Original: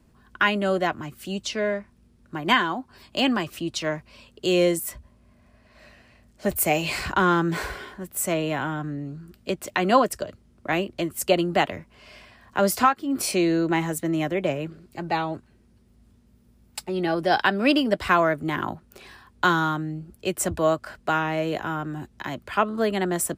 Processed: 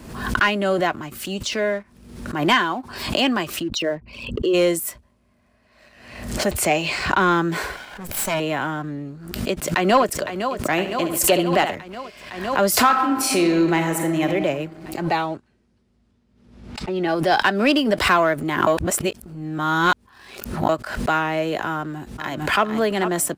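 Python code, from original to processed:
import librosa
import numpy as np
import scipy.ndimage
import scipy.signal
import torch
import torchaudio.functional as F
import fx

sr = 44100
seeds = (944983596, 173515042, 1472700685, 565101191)

y = fx.envelope_sharpen(x, sr, power=2.0, at=(3.62, 4.53), fade=0.02)
y = fx.lowpass(y, sr, hz=6500.0, slope=12, at=(6.51, 7.21))
y = fx.lower_of_two(y, sr, delay_ms=1.3, at=(7.76, 8.4))
y = fx.echo_throw(y, sr, start_s=9.1, length_s=0.99, ms=510, feedback_pct=70, wet_db=-10.5)
y = fx.room_flutter(y, sr, wall_m=11.9, rt60_s=0.4, at=(10.71, 11.75))
y = fx.reverb_throw(y, sr, start_s=12.72, length_s=1.52, rt60_s=1.4, drr_db=4.5)
y = fx.lowpass(y, sr, hz=fx.line((15.26, 8700.0), (17.07, 3400.0)), slope=12, at=(15.26, 17.07), fade=0.02)
y = fx.echo_throw(y, sr, start_s=21.73, length_s=0.9, ms=450, feedback_pct=45, wet_db=-10.5)
y = fx.edit(y, sr, fx.reverse_span(start_s=18.67, length_s=2.02), tone=tone)
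y = fx.low_shelf(y, sr, hz=160.0, db=-7.5)
y = fx.leveller(y, sr, passes=1)
y = fx.pre_swell(y, sr, db_per_s=64.0)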